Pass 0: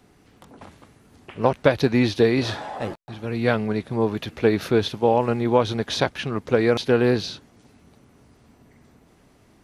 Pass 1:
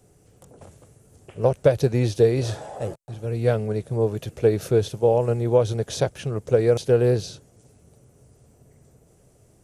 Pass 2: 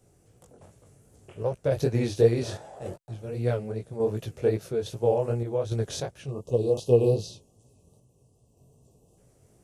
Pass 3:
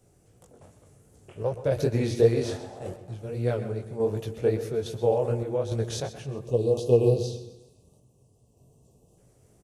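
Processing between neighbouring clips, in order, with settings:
graphic EQ 125/250/500/1000/2000/4000/8000 Hz +6/-10/+6/-9/-8/-9/+9 dB
spectral delete 6.27–9.18, 1200–2500 Hz; chorus 2.6 Hz, delay 16.5 ms, depth 6.1 ms; random-step tremolo
feedback echo 0.131 s, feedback 45%, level -15 dB; on a send at -12 dB: reverb RT60 0.70 s, pre-delay 0.117 s

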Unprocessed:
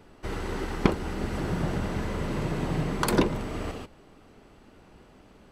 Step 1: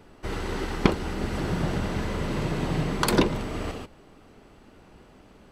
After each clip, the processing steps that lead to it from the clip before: dynamic EQ 3900 Hz, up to +4 dB, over -46 dBFS, Q 0.92; gain +1.5 dB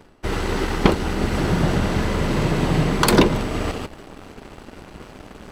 reverse; upward compressor, threshold -31 dBFS; reverse; sample leveller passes 2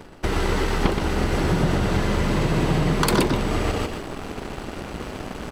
compressor 3:1, threshold -28 dBFS, peak gain reduction 14 dB; on a send: echo 0.122 s -5.5 dB; on the sum: gain +6.5 dB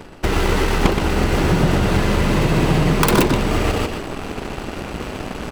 tracing distortion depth 0.39 ms; bell 2600 Hz +3 dB 0.28 oct; gain +4.5 dB

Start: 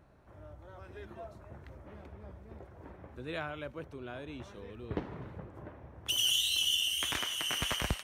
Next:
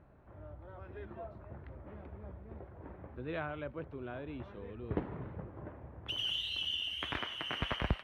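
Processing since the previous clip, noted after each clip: air absorption 410 m; gain +1.5 dB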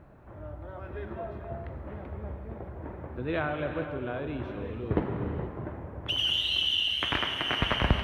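non-linear reverb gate 0.5 s flat, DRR 5 dB; gain +8 dB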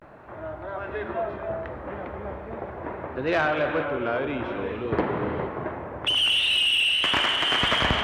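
vibrato 0.41 Hz 76 cents; overdrive pedal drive 19 dB, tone 2900 Hz, clips at -11.5 dBFS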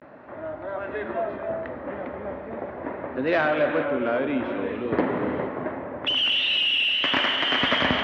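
speaker cabinet 100–5200 Hz, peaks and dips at 120 Hz -3 dB, 260 Hz +9 dB, 570 Hz +5 dB, 1900 Hz +4 dB; gain -1 dB

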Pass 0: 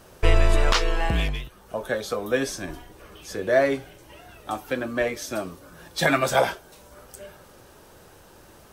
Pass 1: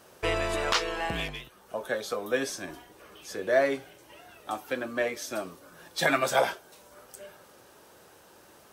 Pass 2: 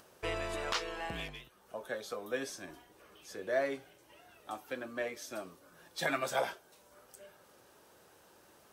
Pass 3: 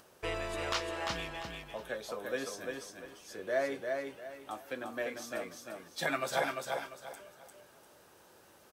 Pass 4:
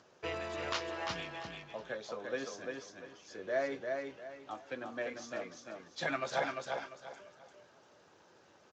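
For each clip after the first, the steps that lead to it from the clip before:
HPF 280 Hz 6 dB/oct; gain -3 dB
upward compressor, threshold -48 dBFS; gain -8.5 dB
feedback echo 0.347 s, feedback 29%, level -4 dB
gain -2 dB; Speex 34 kbps 16000 Hz

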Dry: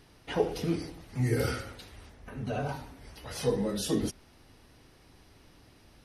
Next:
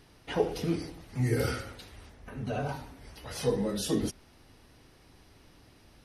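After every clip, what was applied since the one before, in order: nothing audible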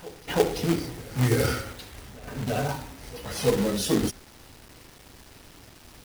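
companded quantiser 4-bit; reverse echo 0.334 s -20 dB; gain +5 dB

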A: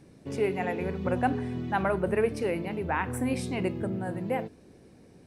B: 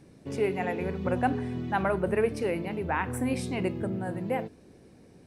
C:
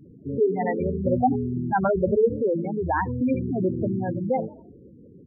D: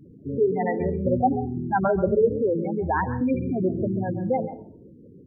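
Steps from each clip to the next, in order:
nothing audible
frequency-shifting echo 82 ms, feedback 49%, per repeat +47 Hz, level -20 dB; spectral gate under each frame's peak -10 dB strong; gain +6.5 dB
reverb, pre-delay 0.136 s, DRR 12 dB

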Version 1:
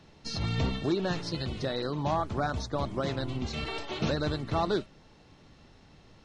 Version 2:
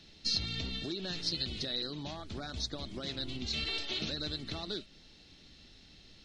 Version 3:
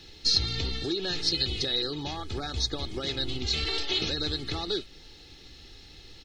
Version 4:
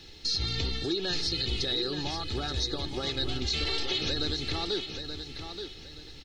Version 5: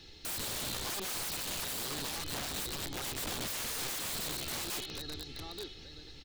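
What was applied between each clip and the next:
compressor, threshold -32 dBFS, peak gain reduction 8.5 dB; graphic EQ 125/500/1000/4000 Hz -8/-5/-12/+10 dB
added noise pink -78 dBFS; comb 2.4 ms, depth 58%; gain +6.5 dB
limiter -20 dBFS, peak gain reduction 9 dB; feedback echo 0.877 s, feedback 29%, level -8 dB
wrapped overs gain 28.5 dB; gain -4 dB

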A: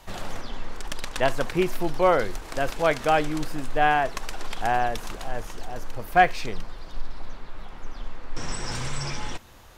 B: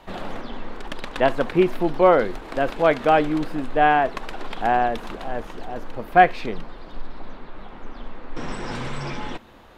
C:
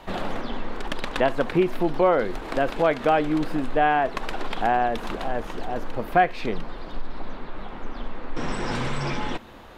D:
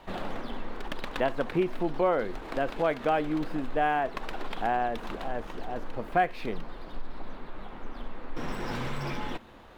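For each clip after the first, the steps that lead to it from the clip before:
EQ curve 110 Hz 0 dB, 230 Hz +10 dB, 3800 Hz +2 dB, 5800 Hz -8 dB; gain -2.5 dB
compressor 2:1, threshold -25 dBFS, peak gain reduction 9.5 dB; gain +3.5 dB
median filter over 5 samples; gain -6 dB

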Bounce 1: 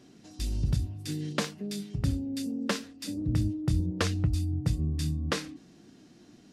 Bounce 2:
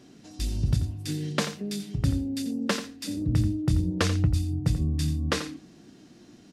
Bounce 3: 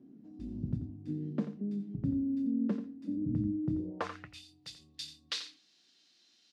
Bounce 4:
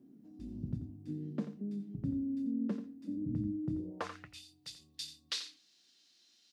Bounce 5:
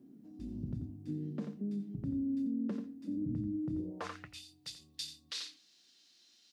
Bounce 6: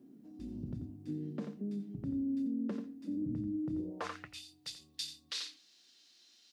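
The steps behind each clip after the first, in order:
echo 87 ms -11.5 dB; gain +3 dB
band-pass sweep 240 Hz -> 4000 Hz, 3.66–4.47
high shelf 6300 Hz +10 dB; gain -3.5 dB
limiter -31 dBFS, peak gain reduction 8 dB; gain +2 dB
tone controls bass -5 dB, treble -1 dB; gain +2 dB

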